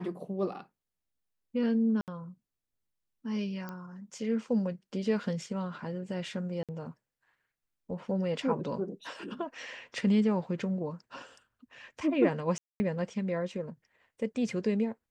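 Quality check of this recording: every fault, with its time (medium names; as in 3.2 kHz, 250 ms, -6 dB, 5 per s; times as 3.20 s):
2.01–2.08 s: dropout 68 ms
3.69 s: pop -26 dBFS
6.63–6.69 s: dropout 57 ms
12.58–12.80 s: dropout 220 ms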